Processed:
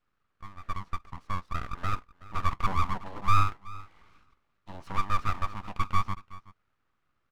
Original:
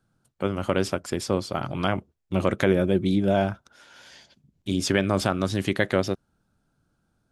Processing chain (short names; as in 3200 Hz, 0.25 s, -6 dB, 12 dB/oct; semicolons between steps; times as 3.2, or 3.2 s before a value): opening faded in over 2.15 s; added noise white -64 dBFS; on a send: echo 0.374 s -21 dB; on the sum: hard clip -16 dBFS, distortion -12 dB; ladder band-pass 640 Hz, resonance 75%; full-wave rectifier; gain +7 dB